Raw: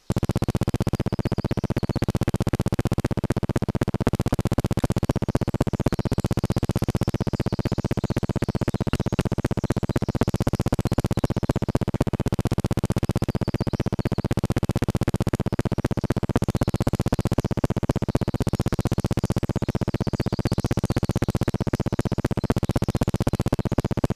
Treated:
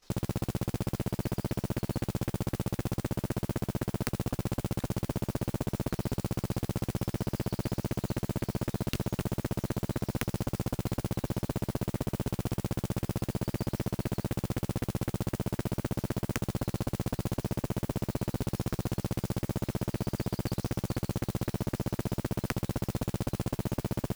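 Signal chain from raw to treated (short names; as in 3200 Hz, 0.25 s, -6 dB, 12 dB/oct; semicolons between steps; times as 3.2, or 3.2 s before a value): level quantiser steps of 15 dB; modulation noise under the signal 17 dB; wrapped overs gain 16.5 dB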